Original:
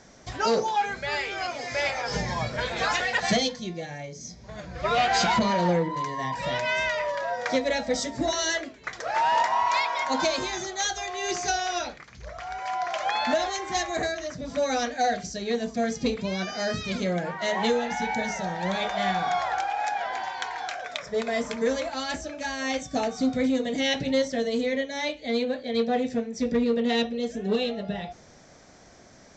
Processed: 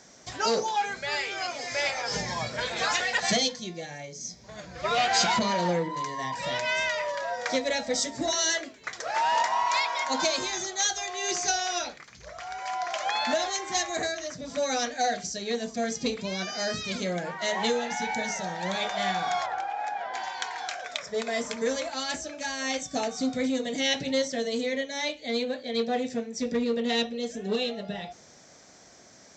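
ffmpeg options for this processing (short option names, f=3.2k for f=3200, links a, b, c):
-filter_complex "[0:a]asettb=1/sr,asplit=3[a][b][c];[a]atrim=end=19.464[d];[b]atrim=start=19.46:end=20.14,asetpts=PTS-STARTPTS,afade=t=in:d=0.004:c=qsin,afade=t=out:st=0.676:d=0.004:c=qsin,equalizer=f=7.5k:w=0.35:g=-14[e];[c]atrim=start=20.136[f];[d][e]acrossfade=d=0.004:c1=hsin:c2=qsin[g];[g][f]acrossfade=d=0.004:c1=qsin:c2=hsin,highpass=f=150:p=1,highshelf=f=4.7k:g=10,volume=-2.5dB"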